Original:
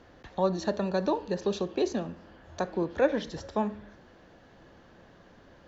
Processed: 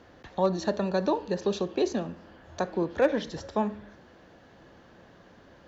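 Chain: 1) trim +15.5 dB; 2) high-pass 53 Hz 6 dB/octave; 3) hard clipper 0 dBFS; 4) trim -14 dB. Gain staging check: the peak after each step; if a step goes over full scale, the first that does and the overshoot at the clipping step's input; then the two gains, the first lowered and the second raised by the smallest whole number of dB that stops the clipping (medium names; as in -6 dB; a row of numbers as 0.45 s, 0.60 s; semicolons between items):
+3.0 dBFS, +3.0 dBFS, 0.0 dBFS, -14.0 dBFS; step 1, 3.0 dB; step 1 +12.5 dB, step 4 -11 dB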